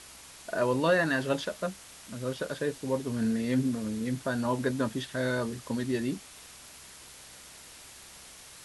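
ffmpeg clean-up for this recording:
-af "bandreject=f=65.8:t=h:w=4,bandreject=f=131.6:t=h:w=4,bandreject=f=197.4:t=h:w=4,bandreject=f=263.2:t=h:w=4,afwtdn=0.0045"

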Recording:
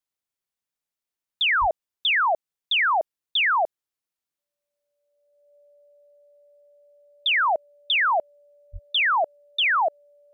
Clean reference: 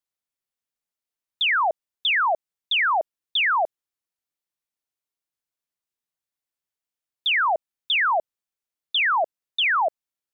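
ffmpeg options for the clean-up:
-filter_complex "[0:a]bandreject=f=580:w=30,asplit=3[s0][s1][s2];[s0]afade=t=out:st=1.6:d=0.02[s3];[s1]highpass=f=140:w=0.5412,highpass=f=140:w=1.3066,afade=t=in:st=1.6:d=0.02,afade=t=out:st=1.72:d=0.02[s4];[s2]afade=t=in:st=1.72:d=0.02[s5];[s3][s4][s5]amix=inputs=3:normalize=0,asplit=3[s6][s7][s8];[s6]afade=t=out:st=8.72:d=0.02[s9];[s7]highpass=f=140:w=0.5412,highpass=f=140:w=1.3066,afade=t=in:st=8.72:d=0.02,afade=t=out:st=8.84:d=0.02[s10];[s8]afade=t=in:st=8.84:d=0.02[s11];[s9][s10][s11]amix=inputs=3:normalize=0"

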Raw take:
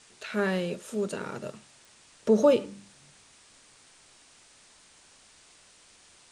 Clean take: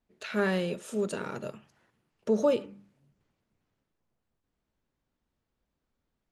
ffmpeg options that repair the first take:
-af "adeclick=t=4,afwtdn=0.002,asetnsamples=n=441:p=0,asendcmd='2.07 volume volume -4.5dB',volume=1"

